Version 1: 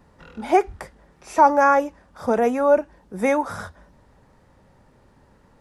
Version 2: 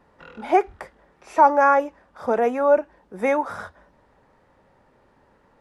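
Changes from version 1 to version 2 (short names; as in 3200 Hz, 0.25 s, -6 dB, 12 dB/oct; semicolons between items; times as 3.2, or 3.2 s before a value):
background +3.5 dB; master: add tone controls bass -9 dB, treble -9 dB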